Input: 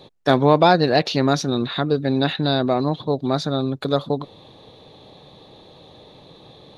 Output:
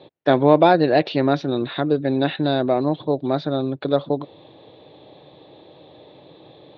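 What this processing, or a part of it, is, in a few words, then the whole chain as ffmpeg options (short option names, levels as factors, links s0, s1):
guitar cabinet: -af "highpass=110,equalizer=f=210:t=q:w=4:g=-7,equalizer=f=320:t=q:w=4:g=6,equalizer=f=590:t=q:w=4:g=4,equalizer=f=1200:t=q:w=4:g=-4,lowpass=f=3500:w=0.5412,lowpass=f=3500:w=1.3066,volume=0.891"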